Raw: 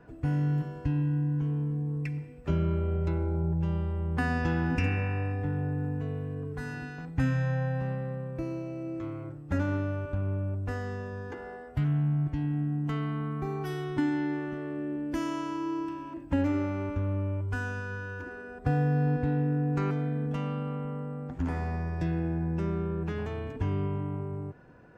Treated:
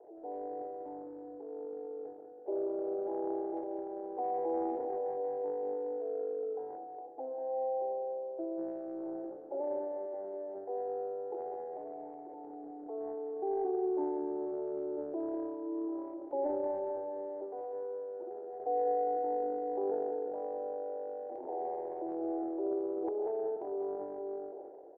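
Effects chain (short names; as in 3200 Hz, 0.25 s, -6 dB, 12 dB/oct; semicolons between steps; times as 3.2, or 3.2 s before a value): Chebyshev band-pass 350–840 Hz, order 4; transient shaper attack -3 dB, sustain +9 dB, from 6.76 s sustain +1 dB, from 8.57 s sustain +9 dB; feedback echo 0.197 s, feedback 37%, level -9 dB; gain +4 dB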